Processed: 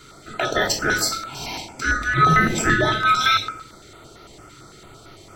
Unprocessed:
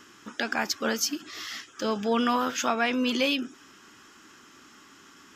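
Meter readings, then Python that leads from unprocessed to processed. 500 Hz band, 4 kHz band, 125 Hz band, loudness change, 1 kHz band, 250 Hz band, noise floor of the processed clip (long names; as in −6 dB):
+3.0 dB, +6.5 dB, can't be measured, +8.0 dB, +10.0 dB, +1.0 dB, −46 dBFS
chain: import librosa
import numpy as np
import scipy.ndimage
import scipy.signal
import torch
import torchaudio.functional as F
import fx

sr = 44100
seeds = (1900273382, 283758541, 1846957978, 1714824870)

y = fx.band_swap(x, sr, width_hz=1000)
y = fx.room_shoebox(y, sr, seeds[0], volume_m3=970.0, walls='furnished', distance_m=3.2)
y = fx.filter_held_notch(y, sr, hz=8.9, low_hz=700.0, high_hz=7800.0)
y = F.gain(torch.from_numpy(y), 4.5).numpy()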